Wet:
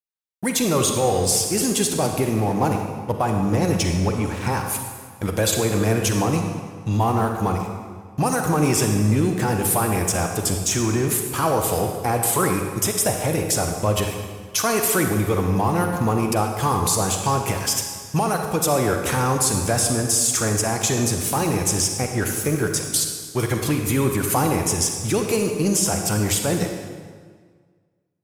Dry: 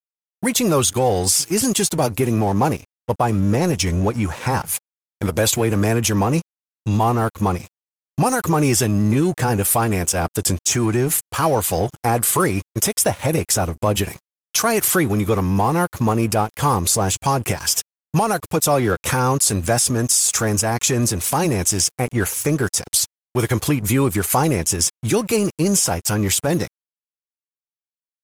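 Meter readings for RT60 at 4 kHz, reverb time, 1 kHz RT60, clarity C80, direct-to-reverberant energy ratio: 1.4 s, 1.7 s, 1.7 s, 5.5 dB, 3.5 dB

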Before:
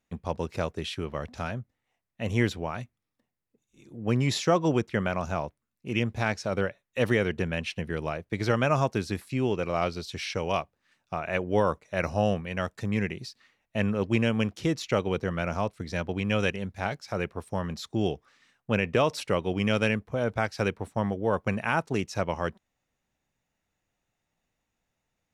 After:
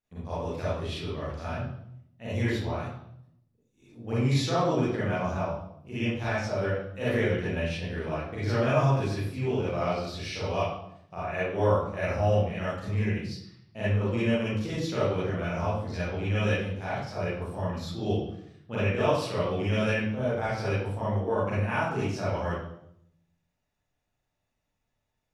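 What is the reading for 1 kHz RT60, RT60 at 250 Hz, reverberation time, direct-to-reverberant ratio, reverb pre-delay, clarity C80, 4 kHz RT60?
0.70 s, 0.90 s, 0.75 s, -11.0 dB, 35 ms, 2.5 dB, 0.65 s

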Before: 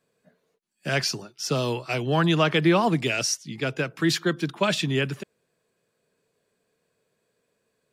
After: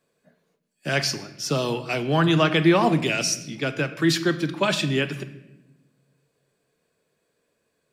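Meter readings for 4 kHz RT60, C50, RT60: 0.75 s, 13.0 dB, 0.95 s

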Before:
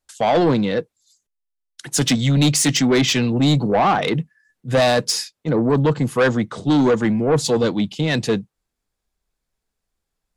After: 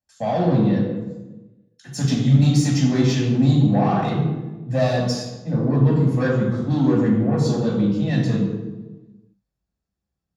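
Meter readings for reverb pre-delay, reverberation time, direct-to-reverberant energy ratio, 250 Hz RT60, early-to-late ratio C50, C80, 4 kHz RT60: 3 ms, 1.2 s, -4.5 dB, 1.5 s, 1.5 dB, 4.0 dB, 0.75 s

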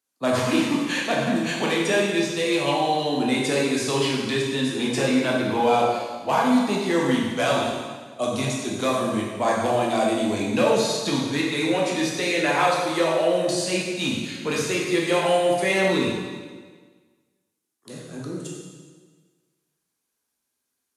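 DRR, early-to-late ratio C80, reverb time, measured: -3.5 dB, 3.0 dB, 1.5 s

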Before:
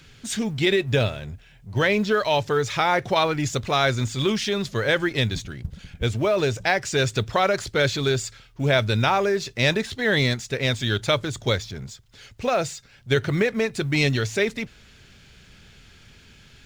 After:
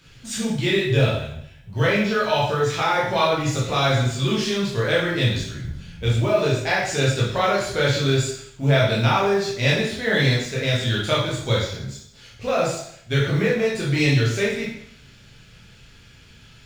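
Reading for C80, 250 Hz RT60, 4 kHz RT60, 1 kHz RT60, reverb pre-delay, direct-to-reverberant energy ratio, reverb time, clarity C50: 6.5 dB, 0.60 s, 0.65 s, 0.70 s, 7 ms, -6.5 dB, 0.70 s, 2.5 dB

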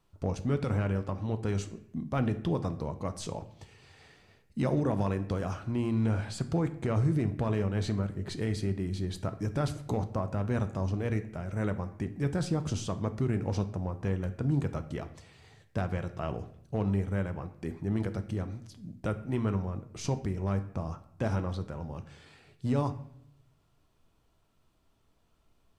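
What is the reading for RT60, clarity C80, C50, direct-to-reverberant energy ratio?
0.70 s, 16.5 dB, 13.5 dB, 9.0 dB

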